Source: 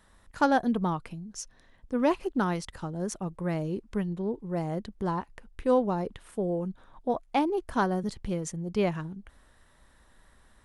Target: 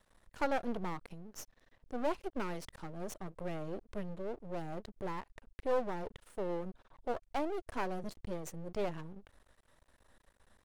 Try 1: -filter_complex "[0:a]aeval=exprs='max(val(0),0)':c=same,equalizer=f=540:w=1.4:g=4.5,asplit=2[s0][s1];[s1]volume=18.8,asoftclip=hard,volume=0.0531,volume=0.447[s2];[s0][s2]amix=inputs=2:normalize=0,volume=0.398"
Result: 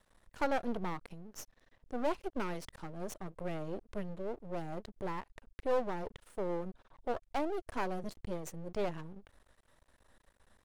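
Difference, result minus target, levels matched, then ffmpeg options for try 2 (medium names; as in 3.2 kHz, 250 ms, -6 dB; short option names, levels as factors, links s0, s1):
overload inside the chain: distortion -4 dB
-filter_complex "[0:a]aeval=exprs='max(val(0),0)':c=same,equalizer=f=540:w=1.4:g=4.5,asplit=2[s0][s1];[s1]volume=39.8,asoftclip=hard,volume=0.0251,volume=0.447[s2];[s0][s2]amix=inputs=2:normalize=0,volume=0.398"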